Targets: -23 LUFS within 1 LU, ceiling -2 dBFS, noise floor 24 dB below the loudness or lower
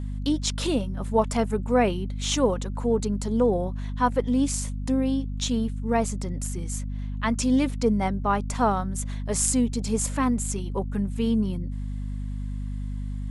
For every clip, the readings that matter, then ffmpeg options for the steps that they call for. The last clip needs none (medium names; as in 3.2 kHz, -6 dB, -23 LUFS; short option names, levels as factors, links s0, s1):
hum 50 Hz; highest harmonic 250 Hz; hum level -28 dBFS; loudness -26.0 LUFS; peak level -7.5 dBFS; loudness target -23.0 LUFS
-> -af "bandreject=f=50:t=h:w=6,bandreject=f=100:t=h:w=6,bandreject=f=150:t=h:w=6,bandreject=f=200:t=h:w=6,bandreject=f=250:t=h:w=6"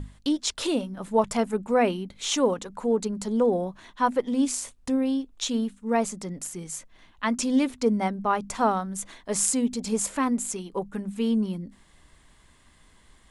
hum not found; loudness -26.5 LUFS; peak level -6.5 dBFS; loudness target -23.0 LUFS
-> -af "volume=1.5"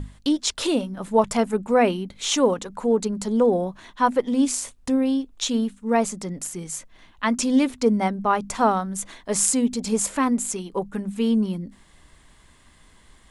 loudness -23.0 LUFS; peak level -3.0 dBFS; noise floor -54 dBFS